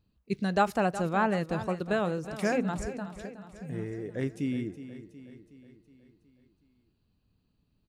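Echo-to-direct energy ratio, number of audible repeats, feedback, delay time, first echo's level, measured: -11.5 dB, 5, 55%, 0.368 s, -13.0 dB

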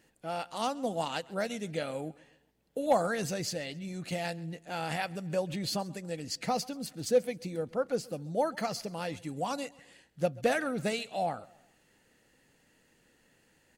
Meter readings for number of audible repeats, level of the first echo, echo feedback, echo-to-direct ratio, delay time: 2, -23.0 dB, 44%, -22.0 dB, 0.133 s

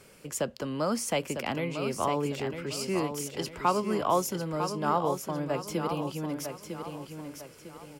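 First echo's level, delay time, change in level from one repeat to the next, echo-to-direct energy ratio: -7.5 dB, 0.952 s, -8.5 dB, -7.0 dB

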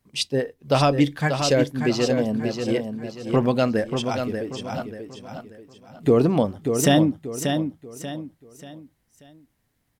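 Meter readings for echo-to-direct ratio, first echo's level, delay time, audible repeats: -6.0 dB, -6.5 dB, 0.586 s, 4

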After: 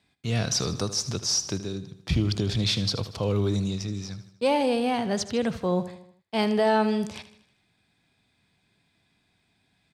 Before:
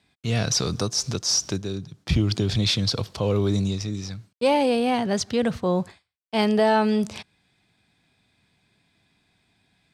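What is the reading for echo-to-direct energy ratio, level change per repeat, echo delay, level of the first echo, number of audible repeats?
-12.5 dB, -6.0 dB, 78 ms, -14.0 dB, 4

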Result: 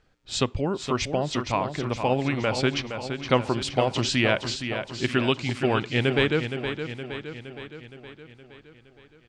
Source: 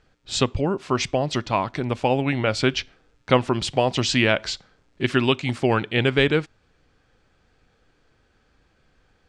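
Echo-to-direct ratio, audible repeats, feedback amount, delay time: -6.5 dB, 6, 58%, 0.467 s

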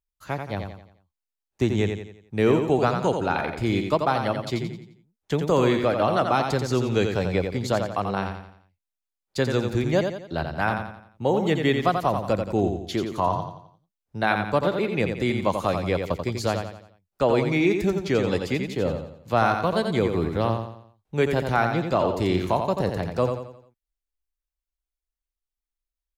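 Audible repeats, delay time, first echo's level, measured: 4, 87 ms, -6.0 dB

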